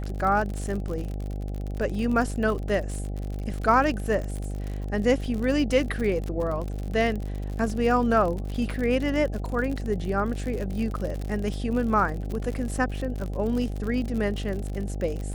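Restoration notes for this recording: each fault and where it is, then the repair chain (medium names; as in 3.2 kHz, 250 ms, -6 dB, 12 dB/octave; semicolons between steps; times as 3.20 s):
buzz 50 Hz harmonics 16 -31 dBFS
crackle 55 per s -30 dBFS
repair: de-click; de-hum 50 Hz, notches 16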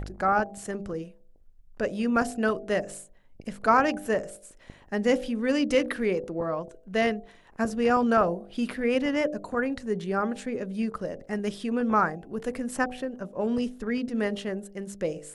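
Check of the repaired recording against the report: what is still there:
nothing left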